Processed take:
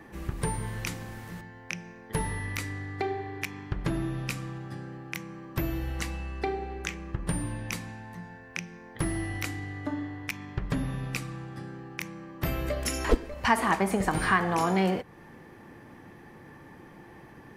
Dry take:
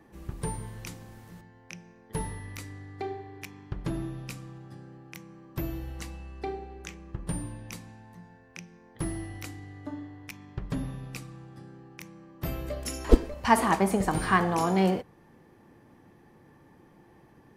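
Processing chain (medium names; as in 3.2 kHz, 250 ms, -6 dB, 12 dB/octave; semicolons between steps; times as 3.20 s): peaking EQ 1.9 kHz +5.5 dB 1.4 oct; compression 2:1, threshold -35 dBFS, peak gain reduction 13.5 dB; trim +6.5 dB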